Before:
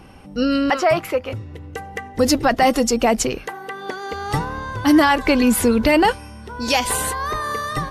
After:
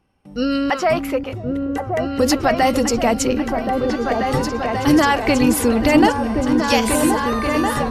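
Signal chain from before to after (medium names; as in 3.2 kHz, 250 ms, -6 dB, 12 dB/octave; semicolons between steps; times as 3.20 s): gate with hold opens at -33 dBFS; on a send: delay with an opening low-pass 537 ms, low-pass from 200 Hz, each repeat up 2 oct, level 0 dB; on the sum: trim -1 dB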